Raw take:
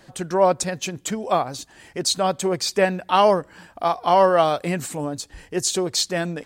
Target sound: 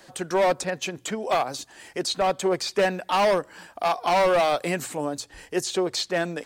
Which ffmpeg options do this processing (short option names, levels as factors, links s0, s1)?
-filter_complex "[0:a]bass=f=250:g=-9,treble=f=4000:g=3,bandreject=f=60:t=h:w=6,bandreject=f=120:t=h:w=6,acrossover=split=320|3500[s0][s1][s2];[s1]asoftclip=type=hard:threshold=0.106[s3];[s2]acompressor=threshold=0.0158:ratio=6[s4];[s0][s3][s4]amix=inputs=3:normalize=0,volume=1.12"